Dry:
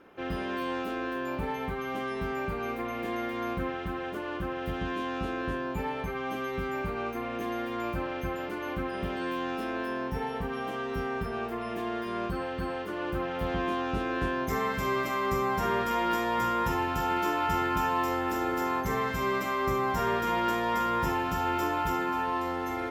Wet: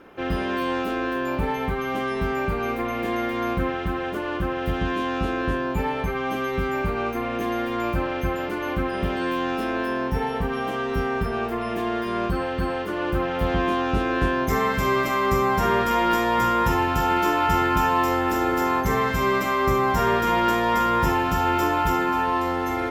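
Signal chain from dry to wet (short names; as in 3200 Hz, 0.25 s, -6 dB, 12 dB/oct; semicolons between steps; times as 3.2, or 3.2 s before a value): low shelf 62 Hz +6 dB; gain +7 dB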